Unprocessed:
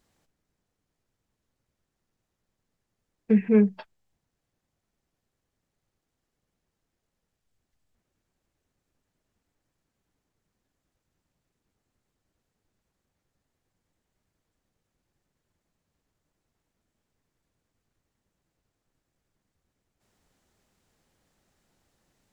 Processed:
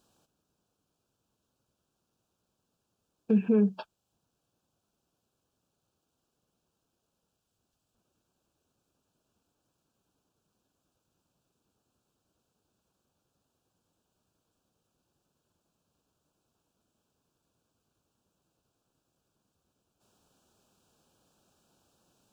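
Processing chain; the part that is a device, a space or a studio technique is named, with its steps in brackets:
PA system with an anti-feedback notch (high-pass filter 130 Hz 6 dB per octave; Butterworth band-reject 2,000 Hz, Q 2; brickwall limiter −19 dBFS, peak gain reduction 8.5 dB)
level +3 dB

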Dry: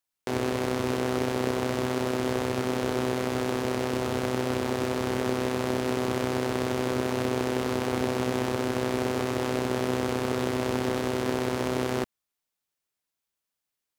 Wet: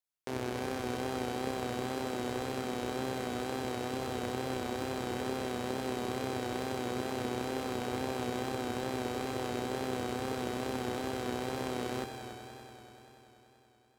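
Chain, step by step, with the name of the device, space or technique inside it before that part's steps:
multi-head tape echo (echo machine with several playback heads 96 ms, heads all three, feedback 72%, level −12.5 dB; tape wow and flutter)
level −8 dB

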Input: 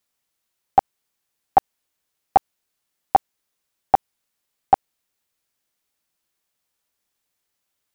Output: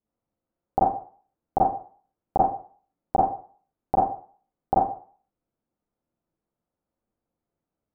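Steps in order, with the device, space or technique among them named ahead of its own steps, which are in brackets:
television next door (downward compressor, threshold −13 dBFS, peak gain reduction 5.5 dB; low-pass filter 530 Hz 12 dB per octave; convolution reverb RT60 0.45 s, pre-delay 31 ms, DRR −7 dB)

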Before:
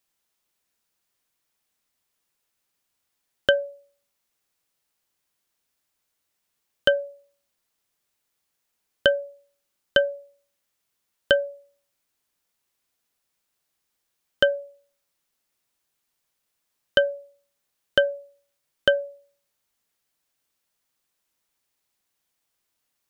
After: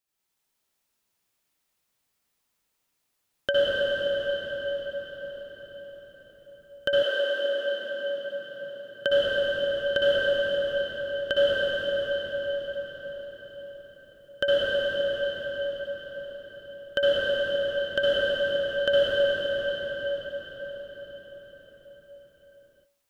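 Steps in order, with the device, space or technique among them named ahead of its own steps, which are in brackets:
cathedral (convolution reverb RT60 6.2 s, pre-delay 56 ms, DRR −9.5 dB)
0:07.02–0:09.08: high-pass filter 370 Hz → 99 Hz 24 dB per octave
level −8.5 dB

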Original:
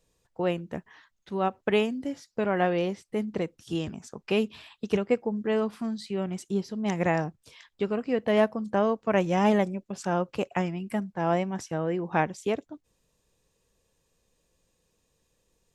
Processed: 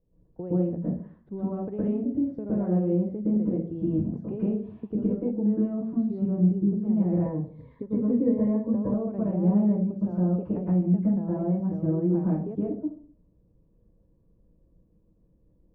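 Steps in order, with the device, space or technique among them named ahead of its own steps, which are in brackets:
television next door (downward compressor 4 to 1, threshold −32 dBFS, peak gain reduction 12.5 dB; low-pass filter 370 Hz 12 dB per octave; convolution reverb RT60 0.50 s, pre-delay 108 ms, DRR −8 dB)
0:07.25–0:08.94: EQ curve with evenly spaced ripples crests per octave 1, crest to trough 12 dB
level +1.5 dB

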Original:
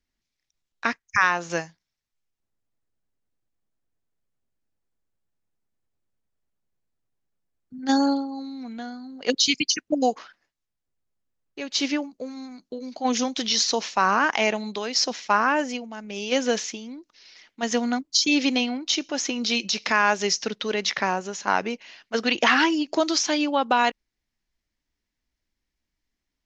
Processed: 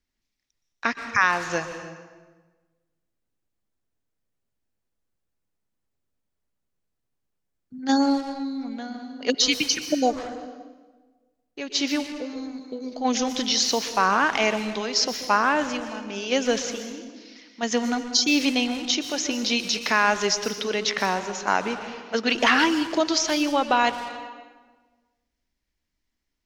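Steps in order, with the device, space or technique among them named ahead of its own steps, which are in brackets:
saturated reverb return (on a send at −5 dB: convolution reverb RT60 1.3 s, pre-delay 116 ms + soft clipping −25.5 dBFS, distortion −8 dB)

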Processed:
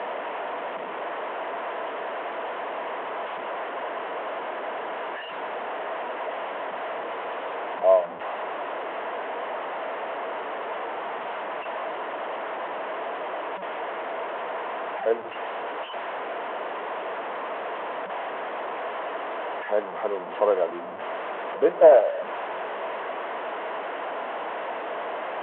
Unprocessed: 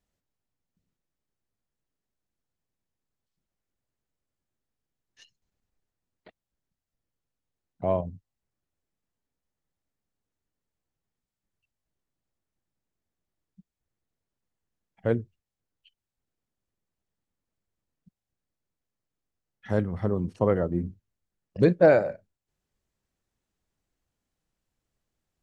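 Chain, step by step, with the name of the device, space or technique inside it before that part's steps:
digital answering machine (band-pass filter 300–3,000 Hz; linear delta modulator 16 kbit/s, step −28.5 dBFS; loudspeaker in its box 410–3,200 Hz, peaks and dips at 460 Hz +5 dB, 660 Hz +10 dB, 990 Hz +8 dB, 2,400 Hz −5 dB)

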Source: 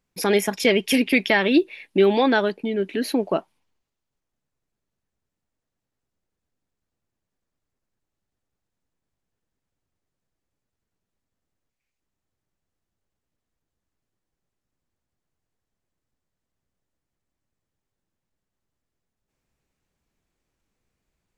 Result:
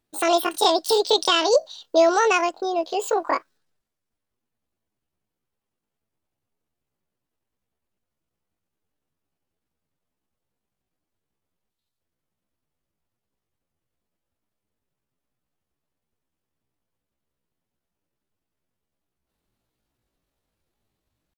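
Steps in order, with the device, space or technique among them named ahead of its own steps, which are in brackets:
chipmunk voice (pitch shifter +9 semitones)

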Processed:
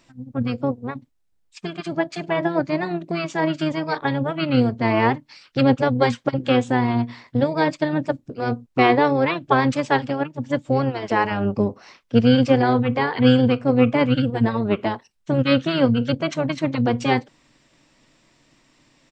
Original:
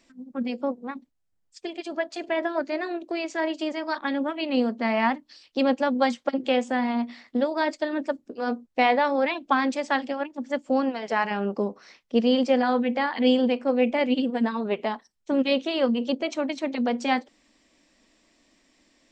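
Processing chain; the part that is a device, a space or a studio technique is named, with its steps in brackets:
octave pedal (pitch-shifted copies added −12 semitones −3 dB)
level +3 dB

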